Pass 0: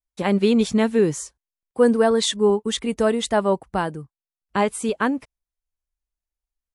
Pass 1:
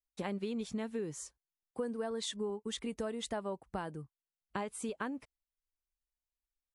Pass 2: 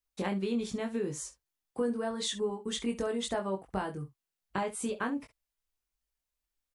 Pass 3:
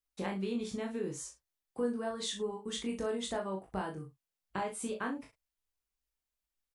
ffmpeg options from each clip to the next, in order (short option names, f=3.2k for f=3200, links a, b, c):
-af "acompressor=threshold=-26dB:ratio=6,volume=-9dB"
-af "aecho=1:1:21|67:0.668|0.2,volume=3.5dB"
-filter_complex "[0:a]asplit=2[a][b];[b]adelay=37,volume=-6dB[c];[a][c]amix=inputs=2:normalize=0,volume=-4dB"